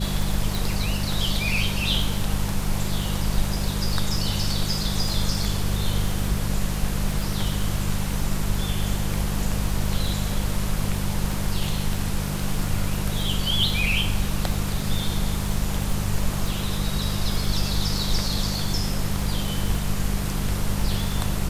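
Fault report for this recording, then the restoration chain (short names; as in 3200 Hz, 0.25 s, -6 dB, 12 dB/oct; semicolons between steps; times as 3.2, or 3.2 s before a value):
crackle 45/s -27 dBFS
hum 50 Hz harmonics 4 -28 dBFS
0.55 pop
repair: de-click; de-hum 50 Hz, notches 4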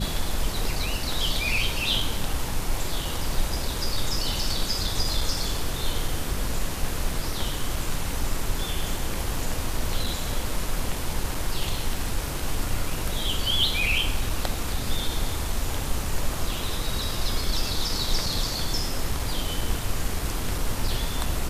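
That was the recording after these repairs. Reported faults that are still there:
none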